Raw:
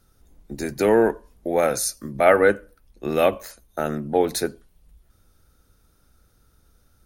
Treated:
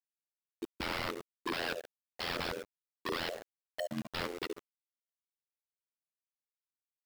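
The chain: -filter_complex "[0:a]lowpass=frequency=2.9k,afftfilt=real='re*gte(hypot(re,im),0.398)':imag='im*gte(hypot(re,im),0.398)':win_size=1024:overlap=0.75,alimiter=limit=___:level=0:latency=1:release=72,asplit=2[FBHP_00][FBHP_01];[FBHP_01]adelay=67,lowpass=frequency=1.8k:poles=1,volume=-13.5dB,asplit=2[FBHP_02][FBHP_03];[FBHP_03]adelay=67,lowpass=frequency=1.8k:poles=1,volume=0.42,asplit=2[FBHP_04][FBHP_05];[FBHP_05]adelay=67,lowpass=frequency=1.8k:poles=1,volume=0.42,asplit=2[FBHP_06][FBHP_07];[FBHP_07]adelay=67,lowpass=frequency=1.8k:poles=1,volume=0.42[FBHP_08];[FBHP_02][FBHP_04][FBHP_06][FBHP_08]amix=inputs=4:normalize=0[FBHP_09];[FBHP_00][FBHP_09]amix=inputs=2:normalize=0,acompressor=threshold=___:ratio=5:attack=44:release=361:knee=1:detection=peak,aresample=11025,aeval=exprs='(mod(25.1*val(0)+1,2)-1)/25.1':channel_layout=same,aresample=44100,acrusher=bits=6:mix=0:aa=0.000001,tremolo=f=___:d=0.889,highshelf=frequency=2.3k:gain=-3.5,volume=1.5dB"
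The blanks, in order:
-16dB, -26dB, 85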